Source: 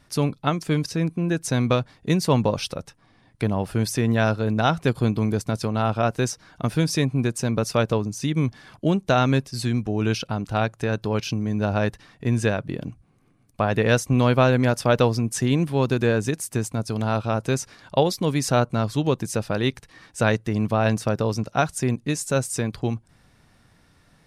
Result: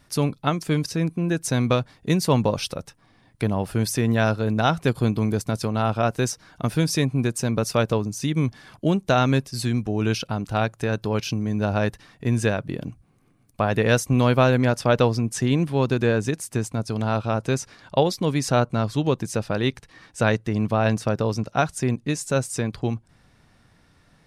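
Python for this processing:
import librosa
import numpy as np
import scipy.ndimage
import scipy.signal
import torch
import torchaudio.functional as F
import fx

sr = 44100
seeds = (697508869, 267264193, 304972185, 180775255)

y = fx.high_shelf(x, sr, hz=11000.0, db=fx.steps((0.0, 6.0), (14.57, -7.5)))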